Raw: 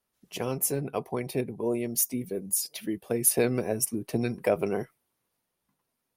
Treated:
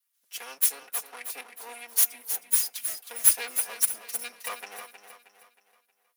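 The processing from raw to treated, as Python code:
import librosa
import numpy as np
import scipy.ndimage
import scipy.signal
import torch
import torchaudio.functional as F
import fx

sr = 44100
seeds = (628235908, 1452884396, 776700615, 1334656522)

y = fx.lower_of_two(x, sr, delay_ms=4.2)
y = scipy.signal.sosfilt(scipy.signal.butter(2, 1500.0, 'highpass', fs=sr, output='sos'), y)
y = fx.high_shelf(y, sr, hz=7900.0, db=9.5)
y = fx.echo_feedback(y, sr, ms=315, feedback_pct=42, wet_db=-9)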